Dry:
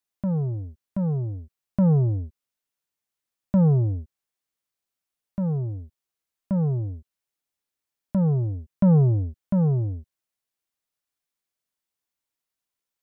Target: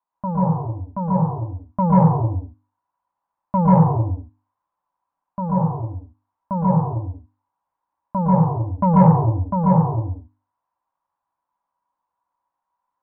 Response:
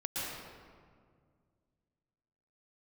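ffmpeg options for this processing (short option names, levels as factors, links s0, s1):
-filter_complex "[0:a]lowpass=f=980:t=q:w=11,equalizer=f=390:w=2.7:g=-8,bandreject=f=50:t=h:w=6,bandreject=f=100:t=h:w=6,bandreject=f=150:t=h:w=6,bandreject=f=200:t=h:w=6,bandreject=f=250:t=h:w=6,bandreject=f=300:t=h:w=6[s0];[1:a]atrim=start_sample=2205,afade=t=out:st=0.3:d=0.01,atrim=end_sample=13671[s1];[s0][s1]afir=irnorm=-1:irlink=0,acontrast=22,lowshelf=f=190:g=-5.5"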